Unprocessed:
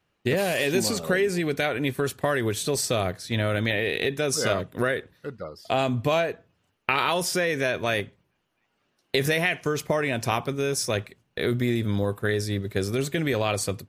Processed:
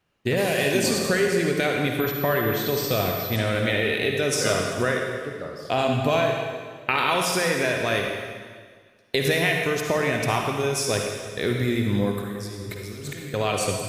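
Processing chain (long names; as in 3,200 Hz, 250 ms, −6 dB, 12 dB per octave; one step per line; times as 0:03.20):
0:12.18–0:13.34: compressor whose output falls as the input rises −38 dBFS, ratio −1
convolution reverb RT60 1.7 s, pre-delay 43 ms, DRR 1 dB
0:02.00–0:03.36: switching amplifier with a slow clock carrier 12,000 Hz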